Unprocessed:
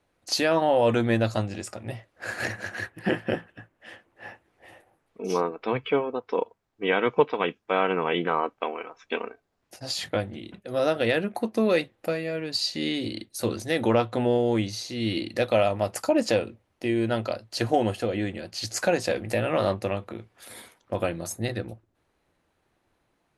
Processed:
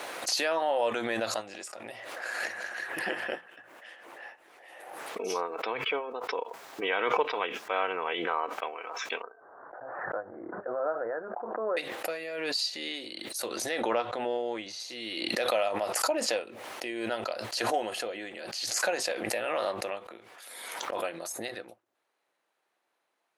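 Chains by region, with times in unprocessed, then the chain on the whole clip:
9.22–11.77 steep low-pass 1600 Hz 72 dB/oct + bell 210 Hz -7.5 dB 1.1 oct
13.69–14.8 LPF 9900 Hz + high shelf 6600 Hz -9 dB
whole clip: HPF 560 Hz 12 dB/oct; backwards sustainer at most 32 dB/s; gain -4 dB

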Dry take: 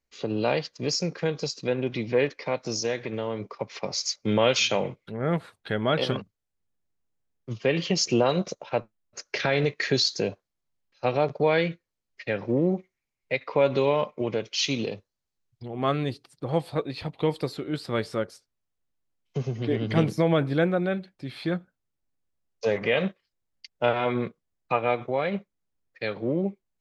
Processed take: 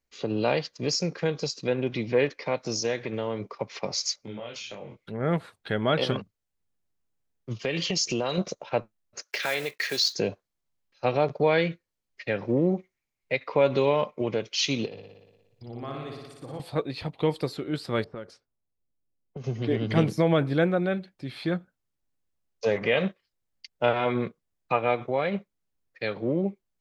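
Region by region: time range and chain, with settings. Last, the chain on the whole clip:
4.25–4.97 compressor 5:1, threshold -32 dBFS + detuned doubles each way 36 cents
7.59–8.38 high shelf 3100 Hz +10.5 dB + compressor 3:1, threshold -25 dBFS
9.22–10.15 block floating point 5-bit + HPF 970 Hz 6 dB/oct
14.86–16.6 compressor 2:1, threshold -44 dBFS + flutter echo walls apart 10.1 m, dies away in 1.2 s
18.04–19.44 low-pass opened by the level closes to 550 Hz, open at -24 dBFS + compressor, threshold -34 dBFS
whole clip: dry

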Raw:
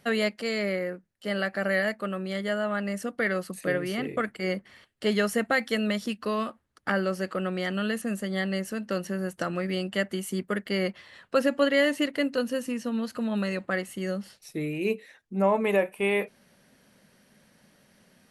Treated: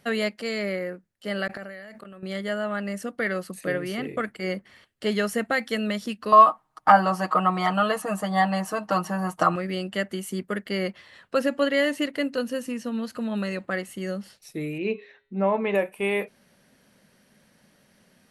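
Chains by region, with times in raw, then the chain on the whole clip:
1.47–2.23 flipped gate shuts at -23 dBFS, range -28 dB + sustainer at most 24 dB/s
6.32–9.56 band shelf 920 Hz +16 dB 1.1 oct + comb 6.4 ms, depth 93%
14.78–15.75 LPF 4300 Hz 24 dB/oct + de-hum 137.4 Hz, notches 31
whole clip: dry

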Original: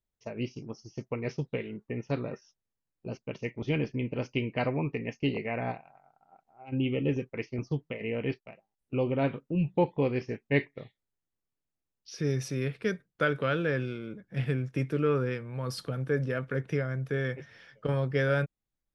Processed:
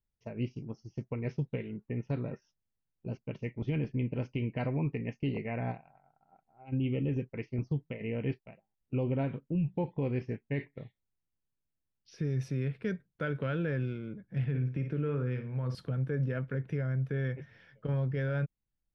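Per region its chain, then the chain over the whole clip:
14.44–15.75 LPF 4900 Hz + flutter echo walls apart 9.5 m, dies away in 0.33 s + compressor 2:1, threshold -29 dBFS
whole clip: tone controls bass +8 dB, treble -10 dB; notch 1200 Hz, Q 12; limiter -19 dBFS; gain -5 dB

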